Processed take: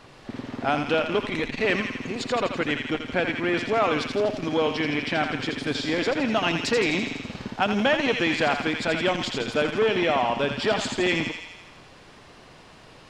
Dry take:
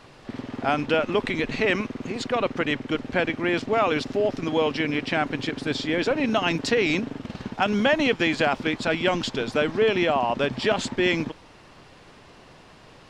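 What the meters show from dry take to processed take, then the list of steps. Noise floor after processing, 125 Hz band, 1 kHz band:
-49 dBFS, -1.0 dB, 0.0 dB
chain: on a send: thinning echo 83 ms, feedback 68%, high-pass 1100 Hz, level -4.5 dB; on the sum: core saturation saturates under 700 Hz

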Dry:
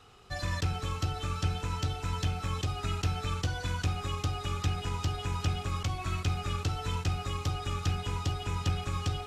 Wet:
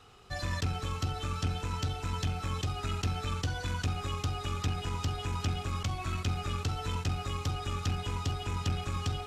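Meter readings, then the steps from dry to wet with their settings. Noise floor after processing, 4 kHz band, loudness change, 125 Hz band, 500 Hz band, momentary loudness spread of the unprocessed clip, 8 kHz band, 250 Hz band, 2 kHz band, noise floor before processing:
-42 dBFS, -0.5 dB, -1.0 dB, -1.5 dB, -0.5 dB, 1 LU, -0.5 dB, 0.0 dB, -1.0 dB, -42 dBFS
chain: core saturation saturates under 150 Hz

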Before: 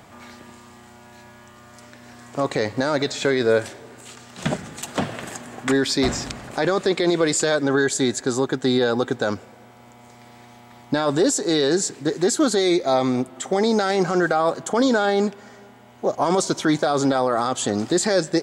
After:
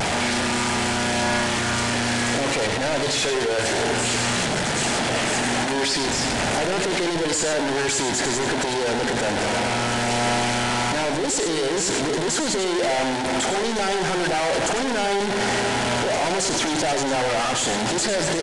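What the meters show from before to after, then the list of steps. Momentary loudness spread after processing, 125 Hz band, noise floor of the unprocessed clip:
1 LU, +1.0 dB, -47 dBFS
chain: infinite clipping; bell 1100 Hz -9 dB 0.26 oct; notch 3700 Hz, Q 28; de-hum 49.44 Hz, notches 5; limiter -26 dBFS, peak gain reduction 9 dB; overdrive pedal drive 17 dB, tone 7900 Hz, clips at -26 dBFS; vibrato 0.39 Hz 15 cents; on a send: echo 0.1 s -7.5 dB; on the sum: downsampling 22050 Hz; gain +6.5 dB

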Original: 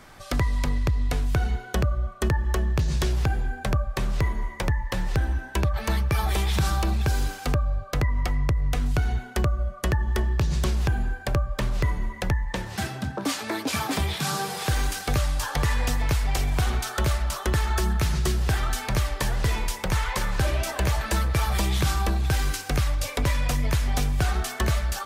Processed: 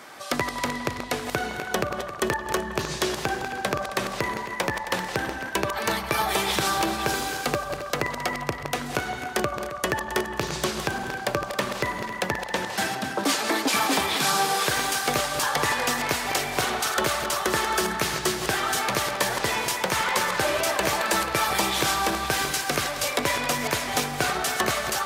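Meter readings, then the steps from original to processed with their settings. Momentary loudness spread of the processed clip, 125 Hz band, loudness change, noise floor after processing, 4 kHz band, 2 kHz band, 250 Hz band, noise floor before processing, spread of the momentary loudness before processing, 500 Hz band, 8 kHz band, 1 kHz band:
6 LU, -12.5 dB, +1.0 dB, -35 dBFS, +6.0 dB, +6.5 dB, +0.5 dB, -39 dBFS, 3 LU, +5.5 dB, +6.0 dB, +6.5 dB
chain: regenerating reverse delay 0.134 s, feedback 59%, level -9 dB; HPF 300 Hz 12 dB/oct; in parallel at -8 dB: soft clip -26 dBFS, distortion -12 dB; on the sum: delay with a stepping band-pass 0.162 s, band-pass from 850 Hz, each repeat 0.7 oct, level -8.5 dB; gain +3 dB

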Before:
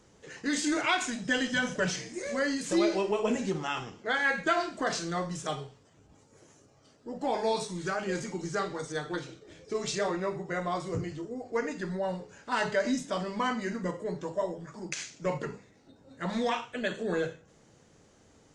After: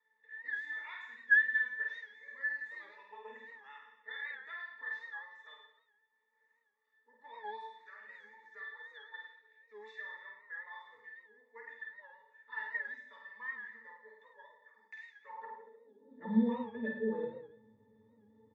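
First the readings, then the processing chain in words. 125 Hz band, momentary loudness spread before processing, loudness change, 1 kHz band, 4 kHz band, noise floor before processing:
under -15 dB, 10 LU, -5.5 dB, -15.5 dB, -20.5 dB, -61 dBFS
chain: three-band isolator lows -21 dB, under 160 Hz, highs -12 dB, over 2500 Hz; octave resonator A, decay 0.18 s; reverse bouncing-ball echo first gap 50 ms, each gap 1.1×, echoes 5; high-pass sweep 1700 Hz -> 72 Hz, 15.22–16.81; record warp 78 rpm, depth 100 cents; gain +5 dB

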